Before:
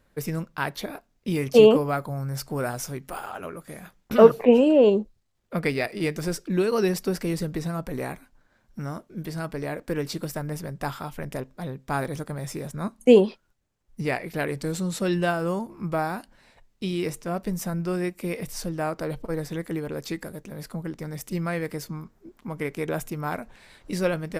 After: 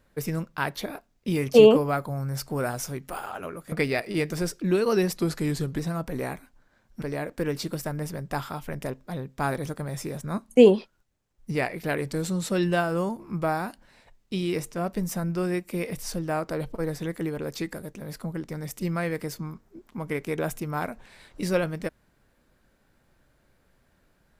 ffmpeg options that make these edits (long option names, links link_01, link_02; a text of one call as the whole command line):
ffmpeg -i in.wav -filter_complex "[0:a]asplit=5[link_01][link_02][link_03][link_04][link_05];[link_01]atrim=end=3.722[link_06];[link_02]atrim=start=5.578:end=7.024[link_07];[link_03]atrim=start=7.02:end=7.58,asetpts=PTS-STARTPTS,asetrate=39249,aresample=44100,atrim=end_sample=27748,asetpts=PTS-STARTPTS[link_08];[link_04]atrim=start=7.576:end=8.812[link_09];[link_05]atrim=start=9.518[link_10];[link_06][link_07]acrossfade=duration=0.004:curve1=hsin:curve2=hsin[link_11];[link_11][link_08]acrossfade=duration=0.004:curve1=hsin:curve2=hsin[link_12];[link_12][link_09]acrossfade=duration=0.004:curve1=hsin:curve2=hsin[link_13];[link_13][link_10]acrossfade=duration=0.004:curve1=hsin:curve2=hsin" out.wav